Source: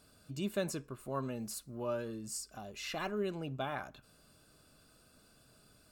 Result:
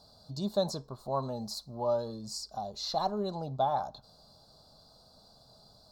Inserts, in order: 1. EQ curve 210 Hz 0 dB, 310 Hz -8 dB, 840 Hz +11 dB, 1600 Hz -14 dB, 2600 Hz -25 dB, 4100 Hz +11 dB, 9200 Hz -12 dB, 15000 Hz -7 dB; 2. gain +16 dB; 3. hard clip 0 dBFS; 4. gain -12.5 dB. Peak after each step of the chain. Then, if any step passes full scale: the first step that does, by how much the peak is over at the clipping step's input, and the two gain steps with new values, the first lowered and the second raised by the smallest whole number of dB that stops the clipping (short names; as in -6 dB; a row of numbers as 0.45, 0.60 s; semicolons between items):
-21.0, -5.0, -5.0, -17.5 dBFS; no overload